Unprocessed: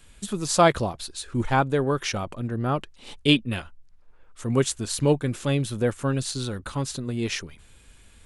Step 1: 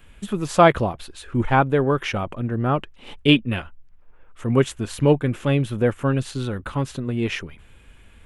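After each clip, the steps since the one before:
flat-topped bell 6,400 Hz −12 dB
level +4 dB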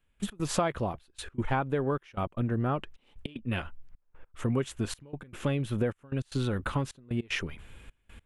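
downward compressor 8 to 1, threshold −25 dBFS, peak gain reduction 16.5 dB
gate pattern "..x.xxxxxx" 152 BPM −24 dB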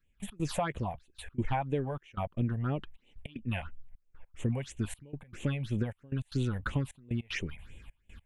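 all-pass phaser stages 6, 3 Hz, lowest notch 320–1,400 Hz
level −1 dB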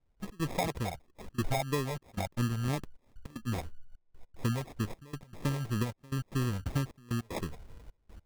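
decimation without filtering 30×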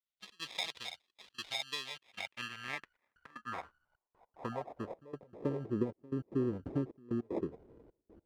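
noise gate −58 dBFS, range −10 dB
band-pass filter sweep 3,600 Hz → 360 Hz, 0:01.78–0:05.76
level +7 dB

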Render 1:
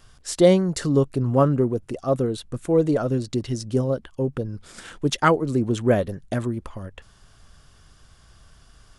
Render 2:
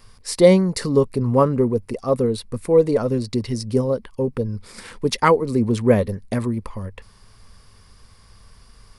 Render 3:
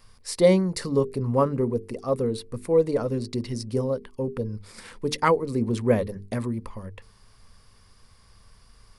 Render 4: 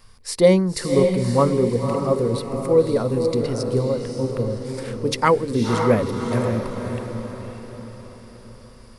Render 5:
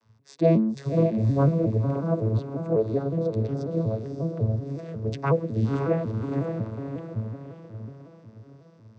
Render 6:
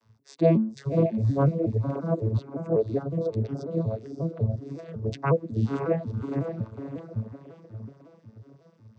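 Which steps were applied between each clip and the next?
EQ curve with evenly spaced ripples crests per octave 0.9, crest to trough 8 dB; level +2 dB
mains-hum notches 50/100/150/200/250/300/350/400/450 Hz; level −5 dB
feedback delay with all-pass diffusion 554 ms, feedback 47%, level −5 dB; level +3.5 dB
vocoder with an arpeggio as carrier major triad, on A2, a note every 183 ms; level −4 dB
reverb reduction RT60 1.1 s

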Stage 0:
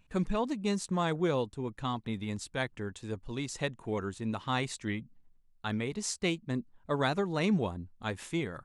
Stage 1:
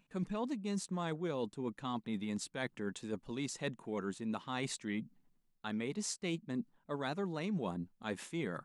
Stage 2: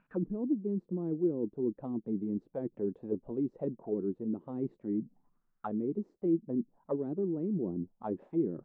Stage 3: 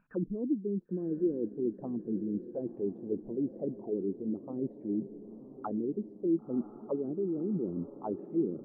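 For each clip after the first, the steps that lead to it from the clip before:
low shelf with overshoot 120 Hz −12.5 dB, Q 1.5; reversed playback; downward compressor 6 to 1, threshold −36 dBFS, peak gain reduction 14 dB; reversed playback; level +1 dB
envelope-controlled low-pass 340–1,500 Hz down, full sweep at −35 dBFS
spectral envelope exaggerated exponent 1.5; feedback delay with all-pass diffusion 1,009 ms, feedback 50%, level −13.5 dB

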